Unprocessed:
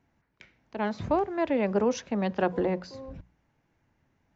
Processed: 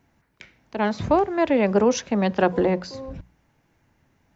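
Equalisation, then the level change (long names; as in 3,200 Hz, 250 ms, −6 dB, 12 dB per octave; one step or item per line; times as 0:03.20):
high-shelf EQ 4,900 Hz +5.5 dB
+6.5 dB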